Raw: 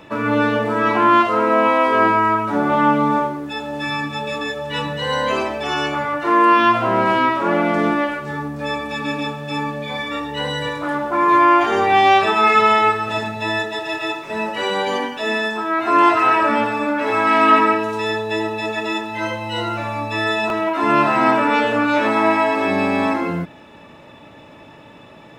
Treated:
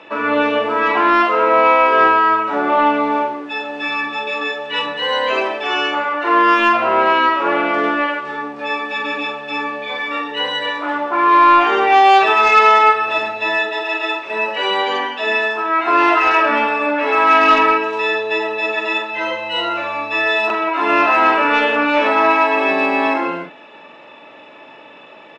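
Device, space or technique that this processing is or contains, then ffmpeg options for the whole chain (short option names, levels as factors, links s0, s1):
intercom: -filter_complex "[0:a]highpass=400,lowpass=4000,equalizer=f=2700:t=o:w=0.31:g=5,asoftclip=type=tanh:threshold=0.531,asplit=2[s0][s1];[s1]adelay=44,volume=0.473[s2];[s0][s2]amix=inputs=2:normalize=0,volume=1.41"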